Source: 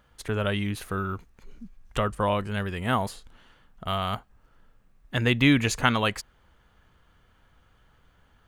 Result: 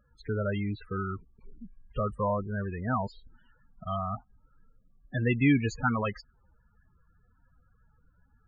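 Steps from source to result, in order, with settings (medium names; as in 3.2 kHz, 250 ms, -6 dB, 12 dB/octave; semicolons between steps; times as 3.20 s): treble shelf 8.6 kHz -10.5 dB; loudest bins only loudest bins 16; trim -2.5 dB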